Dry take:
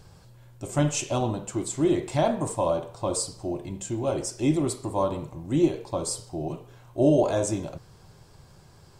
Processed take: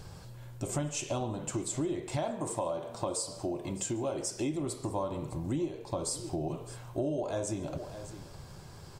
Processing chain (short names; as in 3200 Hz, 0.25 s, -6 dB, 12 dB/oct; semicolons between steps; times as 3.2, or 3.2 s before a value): 2.17–4.54 low shelf 120 Hz -9.5 dB; echo 0.61 s -24 dB; compressor 6:1, threshold -35 dBFS, peak gain reduction 18.5 dB; echo 0.141 s -23.5 dB; gain +4 dB